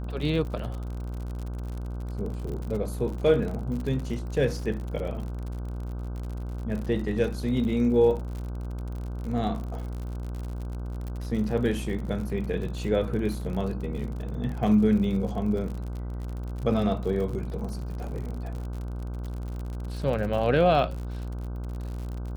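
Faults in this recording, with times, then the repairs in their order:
mains buzz 60 Hz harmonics 26 −33 dBFS
surface crackle 60 per second −34 dBFS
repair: click removal
hum removal 60 Hz, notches 26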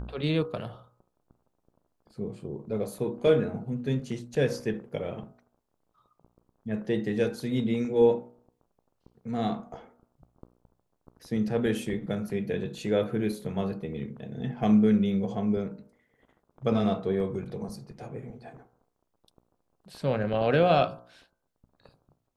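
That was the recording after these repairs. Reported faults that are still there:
none of them is left

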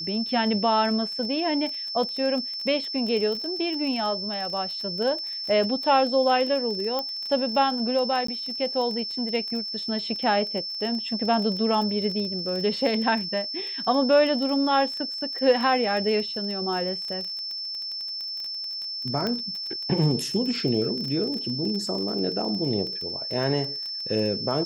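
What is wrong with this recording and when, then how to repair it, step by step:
surface crackle 20 per second −30 dBFS
whistle 5,300 Hz −30 dBFS
0:06.99: click −15 dBFS
0:08.27–0:08.28: drop-out 14 ms
0:19.27: click −15 dBFS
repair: click removal
notch filter 5,300 Hz, Q 30
repair the gap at 0:08.27, 14 ms

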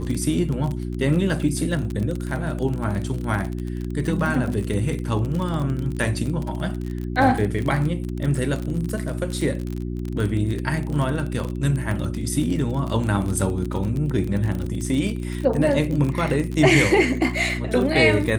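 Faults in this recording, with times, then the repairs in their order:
surface crackle 31 per second −25 dBFS
mains hum 60 Hz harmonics 6 −28 dBFS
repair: click removal
hum removal 60 Hz, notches 6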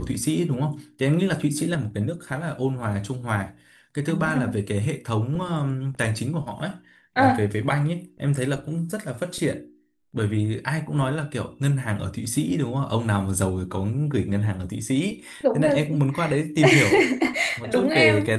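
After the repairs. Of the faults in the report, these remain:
none of them is left

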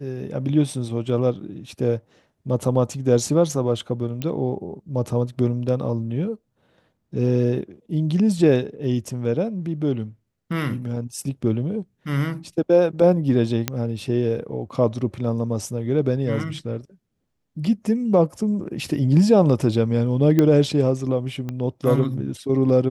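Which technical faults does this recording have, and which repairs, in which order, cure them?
0:04.22: click −14 dBFS
0:13.68: click −6 dBFS
0:20.39: click −7 dBFS
0:21.49: click −17 dBFS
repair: click removal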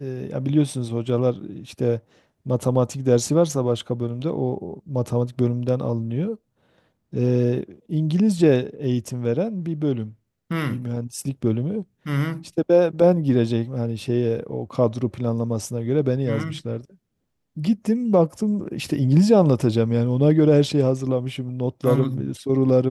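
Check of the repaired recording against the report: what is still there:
0:21.49: click

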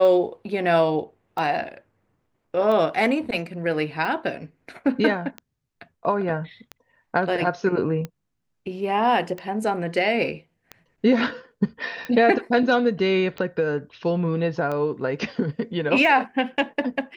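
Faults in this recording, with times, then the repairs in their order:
scratch tick 45 rpm −18 dBFS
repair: click removal

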